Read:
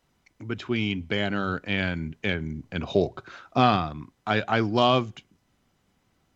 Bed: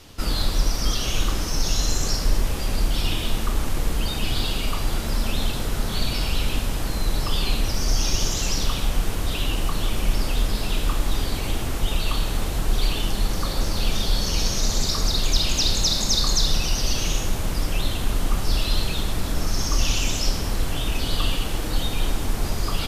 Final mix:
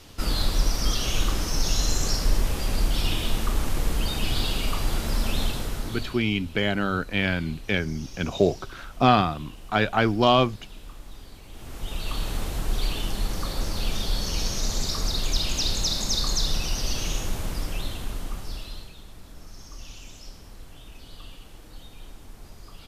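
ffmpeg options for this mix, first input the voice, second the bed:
ffmpeg -i stem1.wav -i stem2.wav -filter_complex "[0:a]adelay=5450,volume=2dB[link_01];[1:a]volume=14dB,afade=type=out:start_time=5.41:duration=0.81:silence=0.11885,afade=type=in:start_time=11.5:duration=0.79:silence=0.16788,afade=type=out:start_time=17.39:duration=1.54:silence=0.158489[link_02];[link_01][link_02]amix=inputs=2:normalize=0" out.wav

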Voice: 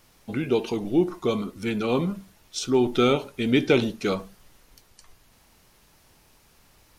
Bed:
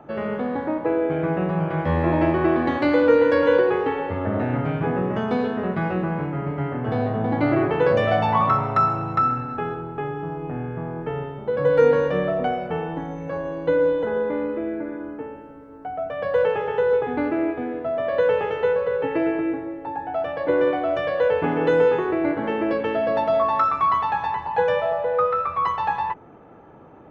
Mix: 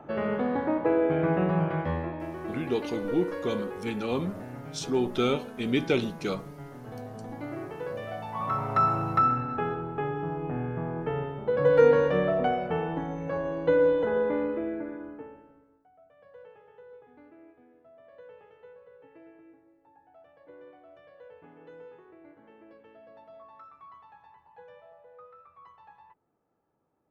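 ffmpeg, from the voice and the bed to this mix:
ffmpeg -i stem1.wav -i stem2.wav -filter_complex "[0:a]adelay=2200,volume=-5.5dB[link_01];[1:a]volume=12.5dB,afade=type=out:start_time=1.56:duration=0.58:silence=0.177828,afade=type=in:start_time=8.33:duration=0.62:silence=0.188365,afade=type=out:start_time=14.31:duration=1.54:silence=0.0398107[link_02];[link_01][link_02]amix=inputs=2:normalize=0" out.wav

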